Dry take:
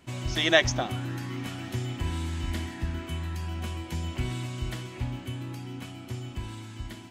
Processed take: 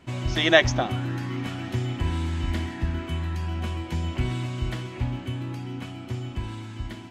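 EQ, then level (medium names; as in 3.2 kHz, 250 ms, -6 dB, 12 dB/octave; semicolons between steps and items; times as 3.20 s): low-pass 3.4 kHz 6 dB/octave; +4.5 dB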